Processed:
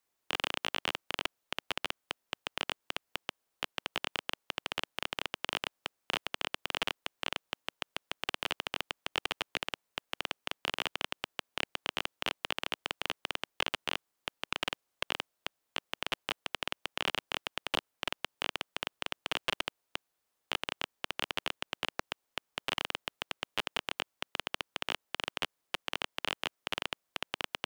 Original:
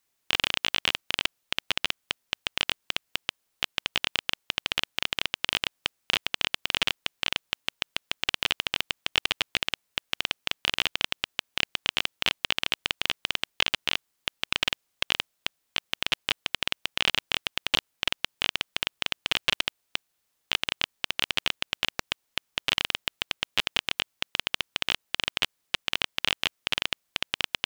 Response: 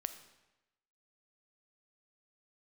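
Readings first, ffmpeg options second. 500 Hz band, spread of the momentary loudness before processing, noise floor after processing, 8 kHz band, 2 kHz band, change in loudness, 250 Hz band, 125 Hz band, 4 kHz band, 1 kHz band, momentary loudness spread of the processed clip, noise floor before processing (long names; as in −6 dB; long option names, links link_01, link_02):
−1.0 dB, 5 LU, −83 dBFS, −8.0 dB, −7.5 dB, −8.5 dB, −3.5 dB, −6.5 dB, −9.5 dB, −2.0 dB, 5 LU, −77 dBFS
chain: -filter_complex "[0:a]acrossover=split=280|1400|2100[link_01][link_02][link_03][link_04];[link_02]acontrast=62[link_05];[link_04]asoftclip=type=tanh:threshold=-17.5dB[link_06];[link_01][link_05][link_03][link_06]amix=inputs=4:normalize=0,volume=-7dB"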